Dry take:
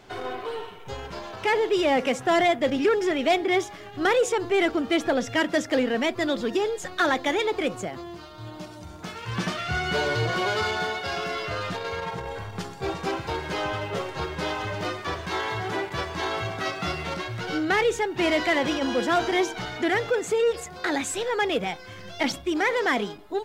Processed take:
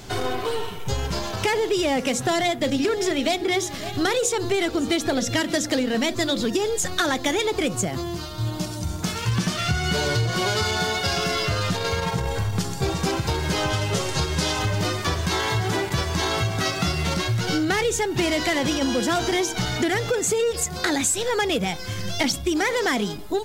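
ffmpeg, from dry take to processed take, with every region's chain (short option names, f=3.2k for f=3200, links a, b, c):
-filter_complex "[0:a]asettb=1/sr,asplit=3[a][b][c];[a]atrim=end=2.084[d];[b]atrim=start=2.08:end=6.46,asetpts=PTS-STARTPTS,afade=t=in:d=0.004:c=qsin,afade=t=out:st=4.376:d=0.004:c=qsin,equalizer=f=4k:t=o:w=0.22:g=6.5,bandreject=f=60:t=h:w=6,bandreject=f=120:t=h:w=6,bandreject=f=180:t=h:w=6,bandreject=f=240:t=h:w=6,bandreject=f=300:t=h:w=6,bandreject=f=360:t=h:w=6,bandreject=f=420:t=h:w=6,bandreject=f=480:t=h:w=6,bandreject=f=540:t=h:w=6,aecho=1:1:556:0.0891,atrim=end_sample=193158[e];[c]atrim=start=6.456[f];[d][e]acrossfade=d=0.004:c1=hsin:c2=qsin[g];[g][f]acrossfade=d=0.004:c1=qsin:c2=hsin,asettb=1/sr,asplit=3[h][i][j];[h]atrim=end=13.704[k];[i]atrim=start=13.7:end=14.59,asetpts=PTS-STARTPTS,afade=t=in:d=0.004:c=qsin,afade=t=out:st=0.886:d=0.004:c=qsin,lowpass=7.4k,aemphasis=mode=production:type=50fm[l];[j]atrim=start=14.586[m];[k][l]acrossfade=d=0.004:c1=hsin:c2=qsin[n];[n][m]acrossfade=d=0.004:c1=qsin:c2=hsin,bass=f=250:g=10,treble=f=4k:g=13,acompressor=threshold=-26dB:ratio=6,volume=6dB"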